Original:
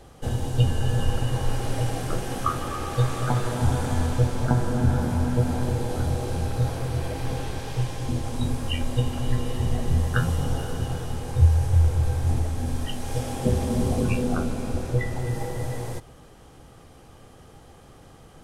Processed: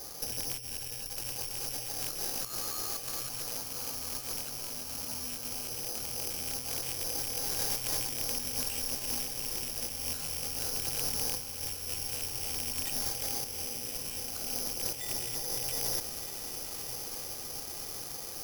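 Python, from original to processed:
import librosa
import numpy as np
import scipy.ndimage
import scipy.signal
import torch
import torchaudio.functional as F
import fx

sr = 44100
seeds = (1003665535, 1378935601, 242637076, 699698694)

p1 = fx.rattle_buzz(x, sr, strikes_db=-27.0, level_db=-23.0)
p2 = fx.bass_treble(p1, sr, bass_db=-10, treble_db=-5)
p3 = fx.over_compress(p2, sr, threshold_db=-39.0, ratio=-1.0)
p4 = p3 + fx.echo_diffused(p3, sr, ms=1221, feedback_pct=69, wet_db=-7.5, dry=0)
p5 = (np.kron(p4[::8], np.eye(8)[0]) * 8)[:len(p4)]
y = F.gain(torch.from_numpy(p5), -7.5).numpy()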